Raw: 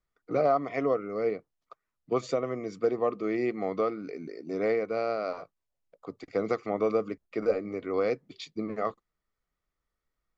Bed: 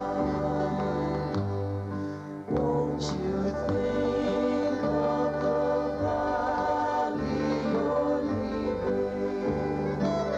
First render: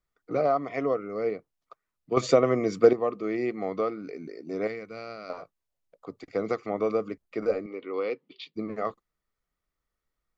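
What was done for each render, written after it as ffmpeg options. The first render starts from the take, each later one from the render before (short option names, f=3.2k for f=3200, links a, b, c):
-filter_complex "[0:a]asettb=1/sr,asplit=3[a][b][c];[a]atrim=end=4.674[d];[b]atrim=start=4.67:end=5.3,asetpts=PTS-STARTPTS,afade=t=in:d=0.004:c=qsin,afade=t=out:st=0.626:d=0.004:c=qsin,equalizer=f=590:t=o:w=2.4:g=-12[e];[c]atrim=start=5.296[f];[d][e]acrossfade=d=0.004:c1=hsin:c2=qsin[g];[g][f]acrossfade=d=0.004:c1=qsin:c2=hsin,asettb=1/sr,asplit=3[h][i][j];[h]atrim=end=7.664[k];[i]atrim=start=7.66:end=8.54,asetpts=PTS-STARTPTS,afade=t=in:d=0.004:c=qsin,afade=t=out:st=0.876:d=0.004:c=qsin,highpass=320,equalizer=f=670:t=q:w=4:g=-10,equalizer=f=1.6k:t=q:w=4:g=-8,equalizer=f=2.9k:t=q:w=4:g=6,lowpass=f=4.2k:w=0.5412,lowpass=f=4.2k:w=1.3066[l];[j]atrim=start=8.536[m];[k][l]acrossfade=d=0.004:c1=hsin:c2=qsin[n];[n][m]acrossfade=d=0.004:c1=qsin:c2=hsin,asplit=3[o][p][q];[o]atrim=end=2.172[r];[p]atrim=start=2.168:end=2.932,asetpts=PTS-STARTPTS,volume=9dB[s];[q]atrim=start=2.928[t];[r][s]acrossfade=d=0.004:c1=hsin:c2=hsin[u];[u][t]acrossfade=d=0.004:c1=hsin:c2=hsin"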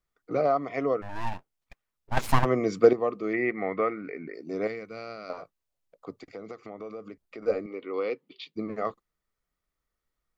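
-filter_complex "[0:a]asplit=3[a][b][c];[a]afade=t=out:st=1.01:d=0.02[d];[b]aeval=exprs='abs(val(0))':c=same,afade=t=in:st=1.01:d=0.02,afade=t=out:st=2.44:d=0.02[e];[c]afade=t=in:st=2.44:d=0.02[f];[d][e][f]amix=inputs=3:normalize=0,asettb=1/sr,asplit=3[g][h][i];[g]atrim=end=3.334[j];[h]atrim=start=3.33:end=4.34,asetpts=PTS-STARTPTS,afade=t=in:d=0.004:c=qsin,afade=t=out:st=1.006:d=0.004:c=qsin,lowpass=f=2k:t=q:w=3.7[k];[i]atrim=start=4.336[l];[j][k]acrossfade=d=0.004:c1=hsin:c2=qsin[m];[m][l]acrossfade=d=0.004:c1=qsin:c2=hsin,asplit=3[n][o][p];[n]afade=t=out:st=6.22:d=0.02[q];[o]acompressor=threshold=-40dB:ratio=3:attack=3.2:release=140:knee=1:detection=peak,afade=t=in:st=6.22:d=0.02,afade=t=out:st=7.46:d=0.02[r];[p]afade=t=in:st=7.46:d=0.02[s];[q][r][s]amix=inputs=3:normalize=0"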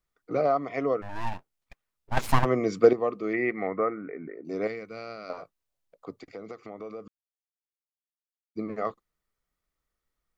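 -filter_complex "[0:a]asettb=1/sr,asplit=3[a][b][c];[a]atrim=end=3.674[d];[b]atrim=start=3.67:end=4.45,asetpts=PTS-STARTPTS,afade=t=in:d=0.004:c=qsin,afade=t=out:st=0.776:d=0.004:c=qsin,lowpass=f=1.8k:w=0.5412,lowpass=f=1.8k:w=1.3066[e];[c]atrim=start=4.446[f];[d][e]acrossfade=d=0.004:c1=hsin:c2=qsin[g];[g][f]acrossfade=d=0.004:c1=qsin:c2=hsin,asplit=3[h][i][j];[h]atrim=end=7.08,asetpts=PTS-STARTPTS,afade=t=out:st=7.076:d=0.004:c=hsin[k];[i]atrim=start=7.08:end=8.55,asetpts=PTS-STARTPTS,volume=0[l];[j]atrim=start=8.55,asetpts=PTS-STARTPTS,afade=t=in:d=0.004:c=hsin[m];[k][l][m]concat=n=3:v=0:a=1"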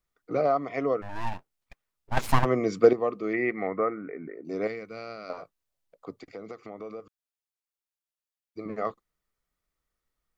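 -filter_complex "[0:a]asettb=1/sr,asplit=3[a][b][c];[a]atrim=end=7.004[d];[b]atrim=start=7:end=8.66,asetpts=PTS-STARTPTS,afade=t=in:d=0.004:c=qsin,afade=t=out:st=1.656:d=0.004:c=qsin,equalizer=f=210:t=o:w=0.98:g=-13[e];[c]atrim=start=8.656[f];[d][e]acrossfade=d=0.004:c1=hsin:c2=qsin[g];[g][f]acrossfade=d=0.004:c1=qsin:c2=hsin"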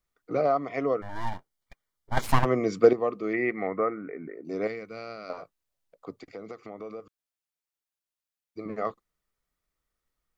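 -filter_complex "[0:a]asettb=1/sr,asplit=3[a][b][c];[a]atrim=end=0.994[d];[b]atrim=start=0.99:end=2.24,asetpts=PTS-STARTPTS,afade=t=in:d=0.004:c=qsin,afade=t=out:st=1.246:d=0.004:c=qsin,asuperstop=centerf=2600:order=12:qfactor=6.9[e];[c]atrim=start=2.236[f];[d][e]acrossfade=d=0.004:c1=hsin:c2=qsin[g];[g][f]acrossfade=d=0.004:c1=qsin:c2=hsin"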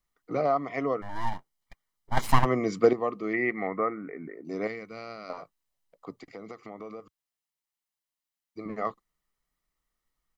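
-af "equalizer=f=77:t=o:w=0.68:g=-10,aecho=1:1:1:0.3"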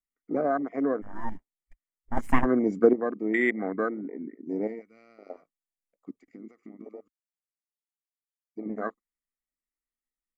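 -af "afwtdn=0.0316,equalizer=f=125:t=o:w=1:g=-11,equalizer=f=250:t=o:w=1:g=9,equalizer=f=1k:t=o:w=1:g=-6,equalizer=f=2k:t=o:w=1:g=7,equalizer=f=4k:t=o:w=1:g=-12,equalizer=f=8k:t=o:w=1:g=8"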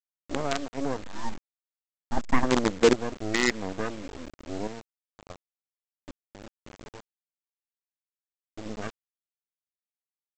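-af "aresample=16000,acrusher=bits=4:dc=4:mix=0:aa=0.000001,aresample=44100,asoftclip=type=hard:threshold=-10dB"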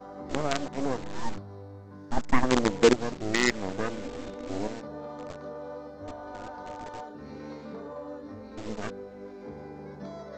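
-filter_complex "[1:a]volume=-13.5dB[a];[0:a][a]amix=inputs=2:normalize=0"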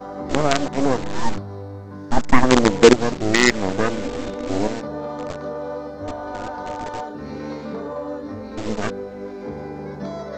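-af "volume=10.5dB,alimiter=limit=-1dB:level=0:latency=1"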